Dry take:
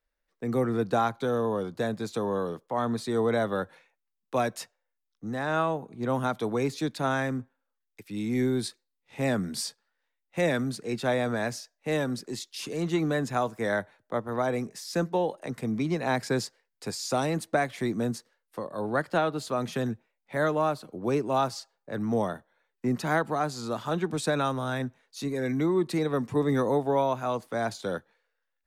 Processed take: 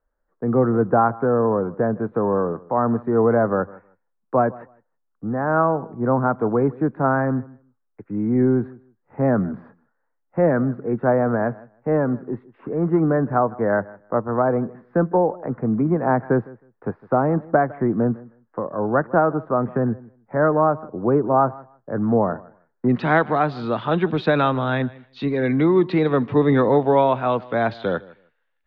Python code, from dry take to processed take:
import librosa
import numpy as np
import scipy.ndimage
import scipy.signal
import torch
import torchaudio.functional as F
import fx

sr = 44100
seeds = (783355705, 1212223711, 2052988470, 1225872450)

y = fx.steep_lowpass(x, sr, hz=fx.steps((0.0, 1500.0), (22.88, 3600.0)), slope=36)
y = fx.echo_feedback(y, sr, ms=157, feedback_pct=17, wet_db=-21.5)
y = y * librosa.db_to_amplitude(8.5)